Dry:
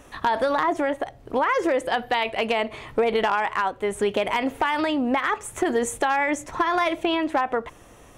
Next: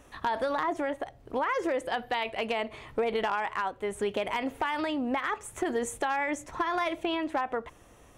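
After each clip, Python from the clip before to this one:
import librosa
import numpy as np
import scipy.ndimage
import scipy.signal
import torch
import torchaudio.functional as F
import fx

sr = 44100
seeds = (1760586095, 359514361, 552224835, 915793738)

y = fx.peak_eq(x, sr, hz=63.0, db=3.0, octaves=0.77)
y = y * librosa.db_to_amplitude(-7.0)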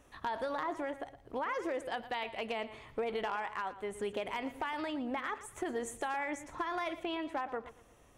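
y = fx.echo_feedback(x, sr, ms=116, feedback_pct=28, wet_db=-14.5)
y = y * librosa.db_to_amplitude(-7.0)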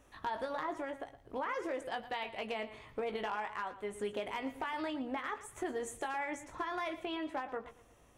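y = fx.doubler(x, sr, ms=19.0, db=-8.0)
y = y * librosa.db_to_amplitude(-2.0)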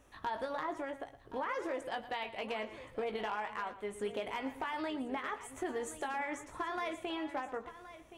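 y = x + 10.0 ** (-14.5 / 20.0) * np.pad(x, (int(1072 * sr / 1000.0), 0))[:len(x)]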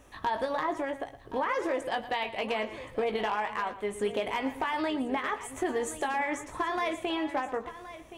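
y = fx.notch(x, sr, hz=1400.0, q=15.0)
y = y * librosa.db_to_amplitude(7.5)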